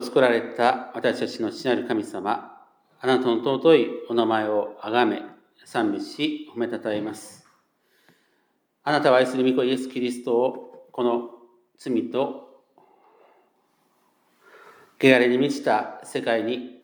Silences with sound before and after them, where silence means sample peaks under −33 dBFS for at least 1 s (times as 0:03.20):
0:07.28–0:08.86
0:12.38–0:15.01